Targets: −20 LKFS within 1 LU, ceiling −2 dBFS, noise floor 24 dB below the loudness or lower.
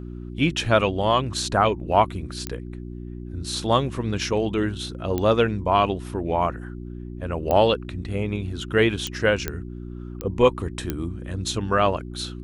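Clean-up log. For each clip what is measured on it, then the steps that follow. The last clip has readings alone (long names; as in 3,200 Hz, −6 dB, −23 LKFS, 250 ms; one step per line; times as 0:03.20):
number of clicks 7; mains hum 60 Hz; hum harmonics up to 360 Hz; level of the hum −33 dBFS; integrated loudness −23.5 LKFS; sample peak −4.0 dBFS; target loudness −20.0 LKFS
→ click removal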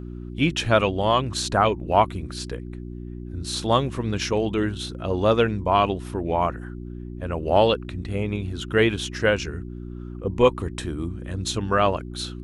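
number of clicks 0; mains hum 60 Hz; hum harmonics up to 360 Hz; level of the hum −33 dBFS
→ hum removal 60 Hz, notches 6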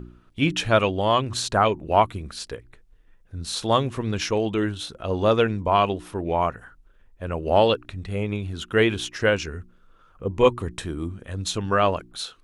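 mains hum none found; integrated loudness −23.5 LKFS; sample peak −4.0 dBFS; target loudness −20.0 LKFS
→ level +3.5 dB
brickwall limiter −2 dBFS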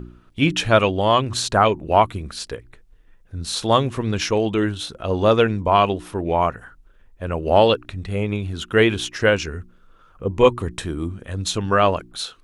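integrated loudness −20.0 LKFS; sample peak −2.0 dBFS; background noise floor −52 dBFS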